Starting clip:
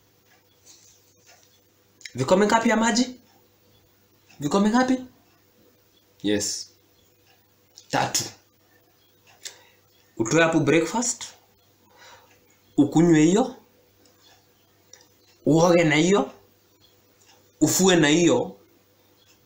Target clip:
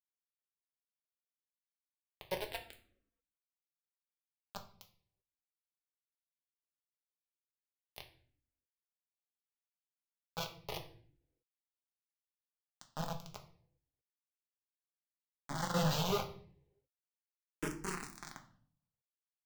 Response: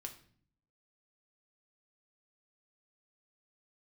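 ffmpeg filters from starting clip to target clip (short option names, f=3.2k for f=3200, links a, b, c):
-filter_complex "[0:a]firequalizer=gain_entry='entry(150,0);entry(250,-18);entry(380,-5);entry(1100,-8);entry(3900,-8);entry(8100,-23);entry(14000,-26)':delay=0.05:min_phase=1,asettb=1/sr,asplit=3[a][b][c];[a]atrim=end=15.744[d];[b]atrim=start=15.74:end=17.78,asetpts=PTS-STARTPTS,afade=t=in:d=0.004:c=qsin,afade=t=out:st=2.036:d=0.004:c=qsin,acontrast=26[e];[c]atrim=start=17.776[f];[d][e]acrossfade=d=0.004:c1=hsin:c2=qsin[g];[g][f]acrossfade=d=0.004:c1=qsin:c2=hsin,aeval=exprs='val(0)*gte(abs(val(0)),0.133)':c=same[h];[1:a]atrim=start_sample=2205[i];[h][i]afir=irnorm=-1:irlink=0,asplit=2[j][k];[k]afreqshift=-0.35[l];[j][l]amix=inputs=2:normalize=1,volume=-4dB"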